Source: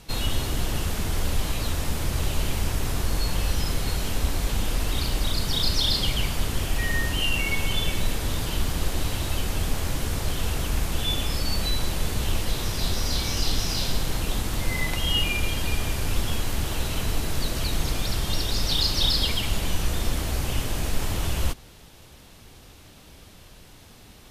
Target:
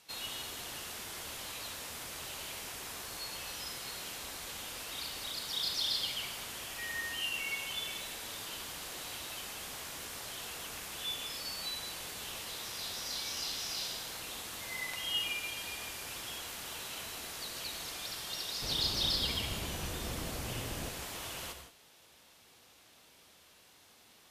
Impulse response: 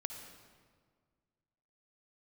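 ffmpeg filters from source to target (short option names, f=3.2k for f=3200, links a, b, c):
-filter_complex "[0:a]asetnsamples=n=441:p=0,asendcmd='18.62 highpass f 130;20.89 highpass f 700',highpass=f=1.1k:p=1[a];[1:a]atrim=start_sample=2205,atrim=end_sample=6615,asetrate=34839,aresample=44100[b];[a][b]afir=irnorm=-1:irlink=0,volume=-7.5dB"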